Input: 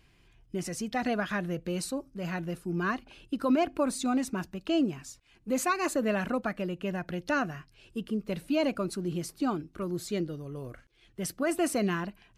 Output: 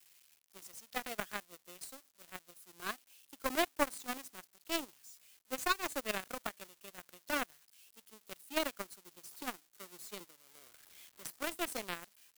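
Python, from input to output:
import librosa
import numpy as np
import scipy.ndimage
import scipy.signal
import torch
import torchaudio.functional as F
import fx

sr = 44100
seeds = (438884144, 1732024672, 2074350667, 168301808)

y = x + 0.5 * 10.0 ** (-30.0 / 20.0) * np.diff(np.sign(x), prepend=np.sign(x[:1]))
y = scipy.signal.sosfilt(scipy.signal.butter(2, 370.0, 'highpass', fs=sr, output='sos'), y)
y = fx.power_curve(y, sr, exponent=3.0)
y = fx.band_squash(y, sr, depth_pct=40, at=(9.31, 11.68))
y = y * 10.0 ** (5.5 / 20.0)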